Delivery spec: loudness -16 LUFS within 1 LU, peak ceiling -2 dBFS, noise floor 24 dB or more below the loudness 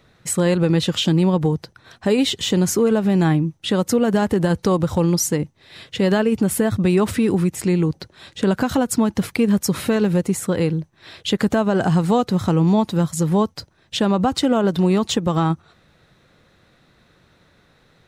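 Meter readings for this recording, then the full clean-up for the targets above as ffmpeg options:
loudness -19.5 LUFS; peak -7.0 dBFS; loudness target -16.0 LUFS
-> -af "volume=3.5dB"

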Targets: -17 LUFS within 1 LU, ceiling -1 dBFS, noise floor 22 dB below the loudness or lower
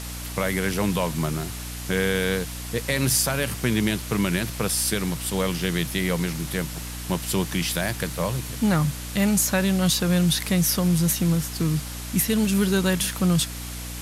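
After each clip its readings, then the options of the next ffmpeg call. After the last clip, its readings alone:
hum 60 Hz; harmonics up to 300 Hz; hum level -33 dBFS; noise floor -34 dBFS; noise floor target -46 dBFS; loudness -24.0 LUFS; peak -9.0 dBFS; loudness target -17.0 LUFS
-> -af "bandreject=f=60:t=h:w=4,bandreject=f=120:t=h:w=4,bandreject=f=180:t=h:w=4,bandreject=f=240:t=h:w=4,bandreject=f=300:t=h:w=4"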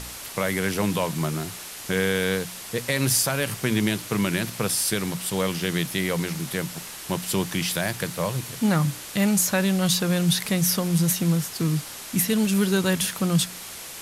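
hum none; noise floor -38 dBFS; noise floor target -46 dBFS
-> -af "afftdn=nr=8:nf=-38"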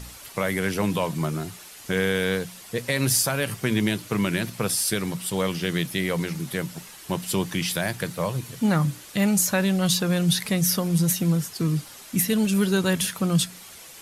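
noise floor -44 dBFS; noise floor target -47 dBFS
-> -af "afftdn=nr=6:nf=-44"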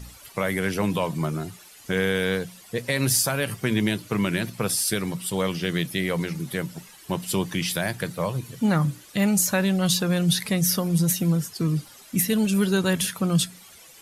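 noise floor -48 dBFS; loudness -24.5 LUFS; peak -9.0 dBFS; loudness target -17.0 LUFS
-> -af "volume=7.5dB"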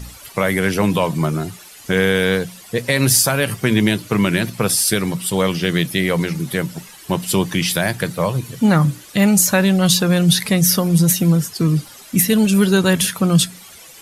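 loudness -17.0 LUFS; peak -1.5 dBFS; noise floor -41 dBFS

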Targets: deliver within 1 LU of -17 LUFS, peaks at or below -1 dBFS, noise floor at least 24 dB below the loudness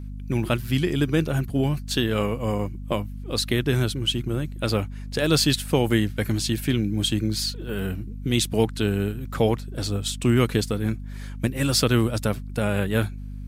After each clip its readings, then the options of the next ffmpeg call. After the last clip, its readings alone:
hum 50 Hz; harmonics up to 250 Hz; hum level -31 dBFS; loudness -24.5 LUFS; peak -6.0 dBFS; loudness target -17.0 LUFS
-> -af "bandreject=f=50:t=h:w=4,bandreject=f=100:t=h:w=4,bandreject=f=150:t=h:w=4,bandreject=f=200:t=h:w=4,bandreject=f=250:t=h:w=4"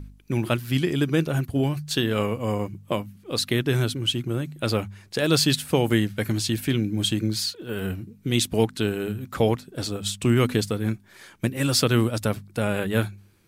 hum none; loudness -25.0 LUFS; peak -6.5 dBFS; loudness target -17.0 LUFS
-> -af "volume=8dB,alimiter=limit=-1dB:level=0:latency=1"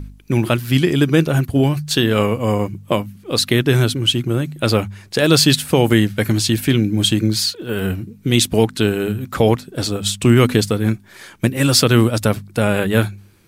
loudness -17.0 LUFS; peak -1.0 dBFS; noise floor -45 dBFS

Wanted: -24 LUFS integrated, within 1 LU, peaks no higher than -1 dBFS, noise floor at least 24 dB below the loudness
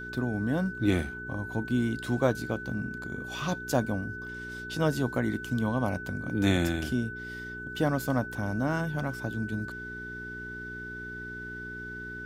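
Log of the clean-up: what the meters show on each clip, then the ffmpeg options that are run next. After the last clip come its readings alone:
hum 60 Hz; harmonics up to 420 Hz; hum level -42 dBFS; steady tone 1500 Hz; tone level -38 dBFS; loudness -31.5 LUFS; peak -10.0 dBFS; loudness target -24.0 LUFS
-> -af "bandreject=f=60:t=h:w=4,bandreject=f=120:t=h:w=4,bandreject=f=180:t=h:w=4,bandreject=f=240:t=h:w=4,bandreject=f=300:t=h:w=4,bandreject=f=360:t=h:w=4,bandreject=f=420:t=h:w=4"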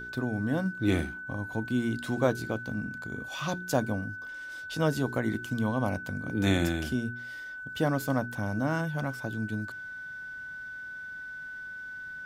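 hum none; steady tone 1500 Hz; tone level -38 dBFS
-> -af "bandreject=f=1.5k:w=30"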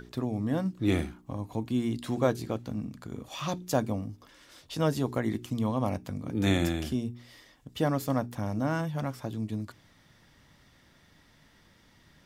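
steady tone none; loudness -31.0 LUFS; peak -10.0 dBFS; loudness target -24.0 LUFS
-> -af "volume=7dB"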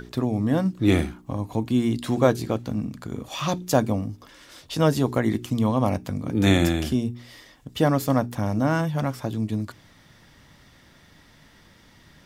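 loudness -24.0 LUFS; peak -3.0 dBFS; noise floor -54 dBFS

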